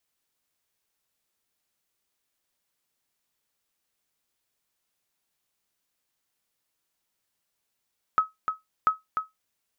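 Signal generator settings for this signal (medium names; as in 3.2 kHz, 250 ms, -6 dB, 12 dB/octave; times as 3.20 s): sonar ping 1.28 kHz, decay 0.17 s, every 0.69 s, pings 2, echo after 0.30 s, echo -6.5 dB -12.5 dBFS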